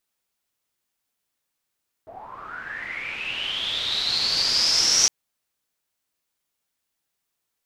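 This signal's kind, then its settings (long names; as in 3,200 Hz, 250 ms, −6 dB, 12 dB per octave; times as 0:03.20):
filter sweep on noise white, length 3.01 s lowpass, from 600 Hz, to 5,800 Hz, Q 11, linear, gain ramp +15 dB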